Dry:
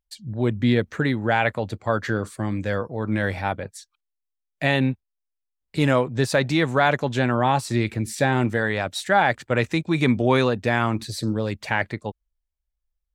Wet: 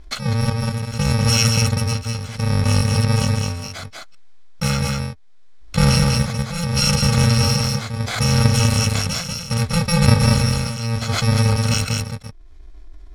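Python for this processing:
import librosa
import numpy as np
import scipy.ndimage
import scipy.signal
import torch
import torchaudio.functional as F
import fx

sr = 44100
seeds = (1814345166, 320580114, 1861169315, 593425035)

p1 = fx.bit_reversed(x, sr, seeds[0], block=128)
p2 = scipy.signal.sosfilt(scipy.signal.butter(2, 4400.0, 'lowpass', fs=sr, output='sos'), p1)
p3 = fx.low_shelf(p2, sr, hz=100.0, db=9.5)
p4 = fx.notch(p3, sr, hz=2800.0, q=7.7)
p5 = fx.level_steps(p4, sr, step_db=21)
p6 = p4 + (p5 * librosa.db_to_amplitude(1.0))
p7 = p6 * (1.0 - 0.96 / 2.0 + 0.96 / 2.0 * np.cos(2.0 * np.pi * 0.7 * (np.arange(len(p6)) / sr)))
p8 = p7 + fx.echo_single(p7, sr, ms=195, db=-5.5, dry=0)
p9 = fx.env_flatten(p8, sr, amount_pct=50)
y = p9 * librosa.db_to_amplitude(4.0)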